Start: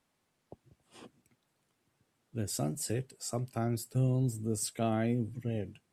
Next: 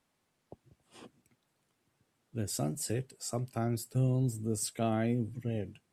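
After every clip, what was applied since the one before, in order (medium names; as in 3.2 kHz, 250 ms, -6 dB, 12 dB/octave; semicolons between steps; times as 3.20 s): no audible change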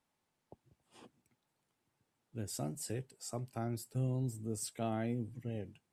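peaking EQ 870 Hz +5.5 dB 0.23 oct; trim -6 dB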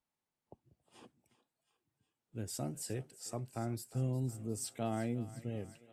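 thinning echo 359 ms, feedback 68%, high-pass 580 Hz, level -15.5 dB; spectral noise reduction 9 dB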